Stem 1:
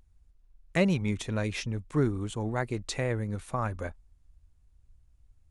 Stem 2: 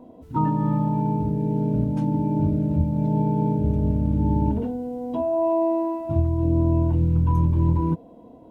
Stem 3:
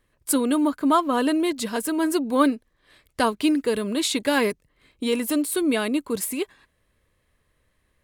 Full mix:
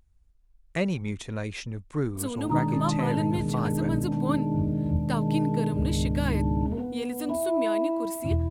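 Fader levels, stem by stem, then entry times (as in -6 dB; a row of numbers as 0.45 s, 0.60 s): -2.0 dB, -4.5 dB, -10.5 dB; 0.00 s, 2.15 s, 1.90 s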